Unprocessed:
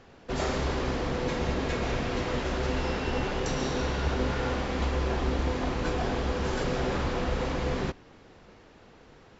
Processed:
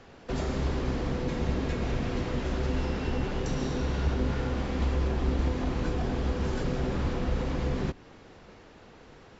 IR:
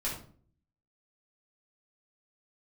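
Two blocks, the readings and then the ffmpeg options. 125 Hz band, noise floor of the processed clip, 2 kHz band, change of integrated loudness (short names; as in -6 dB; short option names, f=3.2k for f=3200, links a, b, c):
+2.0 dB, -52 dBFS, -5.5 dB, -0.5 dB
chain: -filter_complex "[0:a]acrossover=split=330[a][b];[b]acompressor=threshold=-38dB:ratio=6[c];[a][c]amix=inputs=2:normalize=0,volume=2.5dB" -ar 24000 -c:a libmp3lame -b:a 56k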